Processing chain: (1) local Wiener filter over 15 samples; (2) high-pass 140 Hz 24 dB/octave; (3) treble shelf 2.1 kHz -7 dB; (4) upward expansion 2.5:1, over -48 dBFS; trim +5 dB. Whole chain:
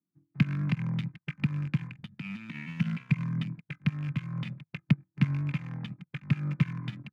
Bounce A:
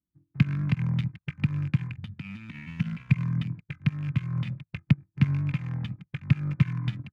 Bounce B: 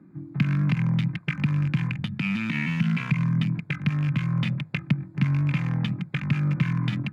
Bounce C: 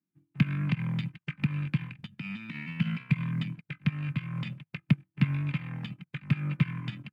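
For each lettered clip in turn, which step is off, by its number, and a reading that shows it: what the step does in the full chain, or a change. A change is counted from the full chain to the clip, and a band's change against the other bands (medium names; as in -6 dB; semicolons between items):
2, 125 Hz band +3.0 dB; 4, crest factor change -6.5 dB; 1, 4 kHz band +2.0 dB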